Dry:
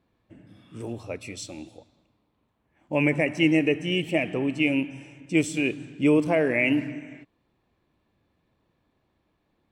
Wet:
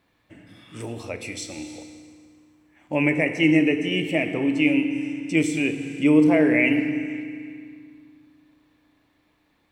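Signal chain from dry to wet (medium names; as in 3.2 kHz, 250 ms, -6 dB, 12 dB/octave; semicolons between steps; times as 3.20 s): peaking EQ 2 kHz +4 dB 0.39 oct; FDN reverb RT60 1.9 s, low-frequency decay 1.5×, high-frequency decay 0.85×, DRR 7.5 dB; tape noise reduction on one side only encoder only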